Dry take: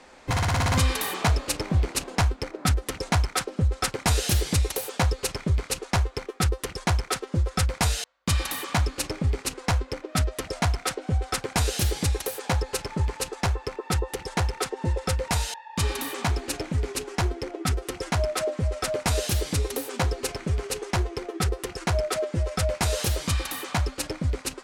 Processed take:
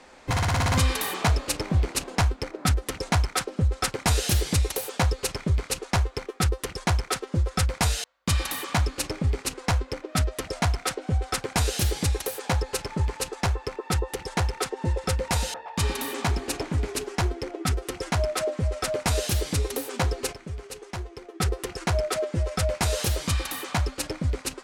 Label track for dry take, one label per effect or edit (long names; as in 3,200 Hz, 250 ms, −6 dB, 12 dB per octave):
14.920000	17.090000	echo through a band-pass that steps 117 ms, band-pass from 300 Hz, each repeat 0.7 octaves, level −5 dB
20.330000	21.400000	clip gain −9 dB